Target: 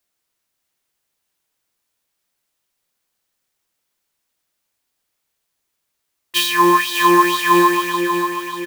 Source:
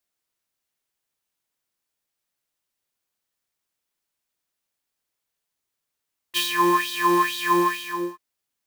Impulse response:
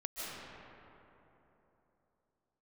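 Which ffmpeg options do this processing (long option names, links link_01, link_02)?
-filter_complex "[0:a]aecho=1:1:590|1180|1770|2360|2950|3540:0.422|0.219|0.114|0.0593|0.0308|0.016,asplit=2[link_01][link_02];[1:a]atrim=start_sample=2205,adelay=110[link_03];[link_02][link_03]afir=irnorm=-1:irlink=0,volume=-20dB[link_04];[link_01][link_04]amix=inputs=2:normalize=0,volume=6.5dB"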